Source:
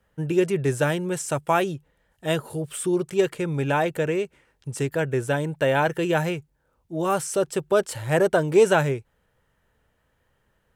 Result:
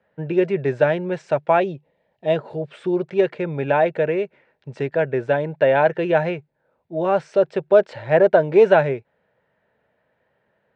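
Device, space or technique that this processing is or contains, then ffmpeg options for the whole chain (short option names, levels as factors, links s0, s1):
kitchen radio: -filter_complex "[0:a]highpass=180,equalizer=f=300:t=q:w=4:g=-5,equalizer=f=620:t=q:w=4:g=6,equalizer=f=1200:t=q:w=4:g=-7,equalizer=f=3100:t=q:w=4:g=-8,lowpass=f=3500:w=0.5412,lowpass=f=3500:w=1.3066,asettb=1/sr,asplit=3[s0][s1][s2];[s0]atrim=end=1.604[s3];[s1]atrim=start=1.6:end=2.36,asetpts=PTS-STARTPTS,afade=t=in:d=0.004:c=qsin,afade=t=out:st=0.756:d=0.004:c=qsin,equalizer=f=1500:t=o:w=0.57:g=-12.5[s4];[s2]atrim=start=2.356[s5];[s3][s4]acrossfade=d=0.004:c1=hsin:c2=qsin[s6];[s6][s5]acrossfade=d=0.004:c1=qsin:c2=hsin,volume=1.5"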